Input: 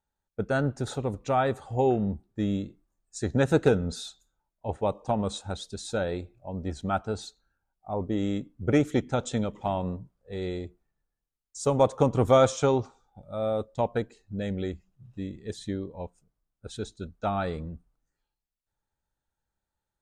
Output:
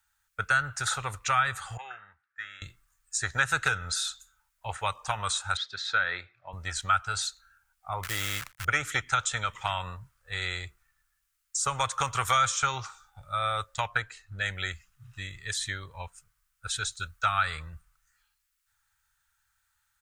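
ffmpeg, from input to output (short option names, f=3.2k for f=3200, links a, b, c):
-filter_complex "[0:a]asettb=1/sr,asplit=3[a][b][c];[a]atrim=end=1.774[d];[b]atrim=start=1.77:end=2.62,asetpts=PTS-STARTPTS,afade=t=in:d=0.004:c=qsin,afade=t=out:st=0.846:d=0.004:c=qsin,bandpass=f=1.6k:t=q:w=3.6[e];[c]atrim=start=2.616[f];[d][e]acrossfade=d=0.004:c1=hsin:c2=qsin[g];[g][f]acrossfade=d=0.004:c1=qsin:c2=hsin,asettb=1/sr,asplit=3[h][i][j];[h]atrim=end=5.574[k];[i]atrim=start=5.57:end=6.53,asetpts=PTS-STARTPTS,afade=t=in:d=0.004:c=qsin,afade=t=out:st=0.956:d=0.004:c=qsin,highpass=220,equalizer=f=810:t=q:w=4:g=-4,equalizer=f=1.9k:t=q:w=4:g=4,equalizer=f=2.8k:t=q:w=4:g=-7,lowpass=f=3.9k:w=0.5412,lowpass=f=3.9k:w=1.3066[l];[j]atrim=start=6.526[m];[k][l]acrossfade=d=0.004:c1=hsin:c2=qsin[n];[n][m]acrossfade=d=0.004:c1=qsin:c2=hsin,asettb=1/sr,asplit=3[o][p][q];[o]atrim=end=8.034[r];[p]atrim=start=8.03:end=8.65,asetpts=PTS-STARTPTS,afade=t=in:d=0.004:c=qsin,afade=t=out:st=0.616:d=0.004:c=qsin,acrusher=bits=8:dc=4:mix=0:aa=0.000001[s];[q]atrim=start=8.646[t];[r][s]acrossfade=d=0.004:c1=hsin:c2=qsin[u];[u][t]acrossfade=d=0.004:c1=qsin:c2=hsin,asettb=1/sr,asplit=3[v][w][x];[v]atrim=end=13.864[y];[w]atrim=start=13.86:end=14.46,asetpts=PTS-STARTPTS,afade=t=in:d=0.004:c=qsin,afade=t=out:st=0.596:d=0.004:c=qsin,highshelf=f=5k:g=-7[z];[x]atrim=start=14.456[aa];[y][z]acrossfade=d=0.004:c1=hsin:c2=qsin[ab];[ab][aa]acrossfade=d=0.004:c1=qsin:c2=hsin,asettb=1/sr,asplit=3[ac][ad][ae];[ac]atrim=end=16.874[af];[ad]atrim=start=16.87:end=17.54,asetpts=PTS-STARTPTS,afade=t=in:d=0.004:c=qsin,afade=t=out:st=0.666:d=0.004:c=qsin,highshelf=f=9.2k:g=5[ag];[ae]atrim=start=17.536[ah];[af][ag]acrossfade=d=0.004:c1=hsin:c2=qsin[ai];[ai][ah]acrossfade=d=0.004:c1=qsin:c2=hsin,firequalizer=gain_entry='entry(110,0);entry(220,-24);entry(1300,15);entry(3700,10);entry(7800,14)':delay=0.05:min_phase=1,acrossover=split=240|1600[aj][ak][al];[aj]acompressor=threshold=-43dB:ratio=4[am];[ak]acompressor=threshold=-31dB:ratio=4[an];[al]acompressor=threshold=-32dB:ratio=4[ao];[am][an][ao]amix=inputs=3:normalize=0,volume=3dB"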